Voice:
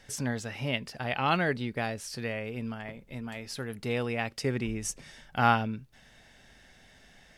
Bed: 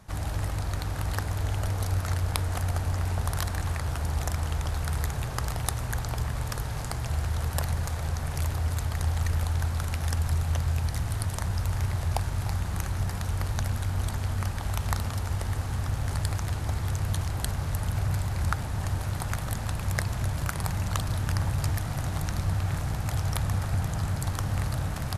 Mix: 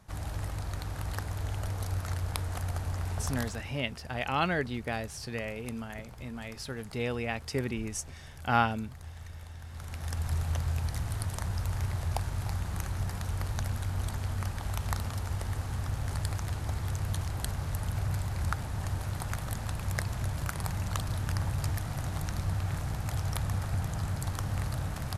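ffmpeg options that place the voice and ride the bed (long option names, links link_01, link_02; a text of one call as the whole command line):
ffmpeg -i stem1.wav -i stem2.wav -filter_complex "[0:a]adelay=3100,volume=-2dB[link_01];[1:a]volume=8.5dB,afade=type=out:start_time=3.28:duration=0.46:silence=0.237137,afade=type=in:start_time=9.64:duration=0.74:silence=0.199526[link_02];[link_01][link_02]amix=inputs=2:normalize=0" out.wav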